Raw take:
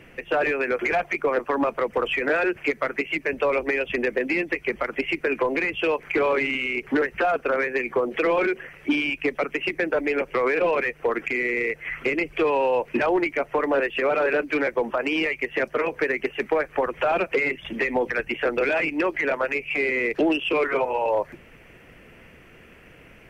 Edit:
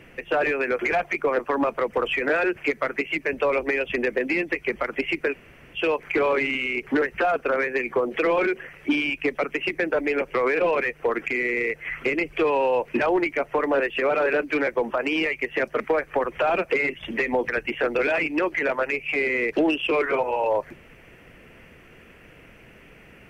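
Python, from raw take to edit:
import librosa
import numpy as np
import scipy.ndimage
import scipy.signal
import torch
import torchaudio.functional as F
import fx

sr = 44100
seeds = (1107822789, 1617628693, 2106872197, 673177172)

y = fx.edit(x, sr, fx.room_tone_fill(start_s=5.32, length_s=0.43, crossfade_s=0.04),
    fx.cut(start_s=15.8, length_s=0.62), tone=tone)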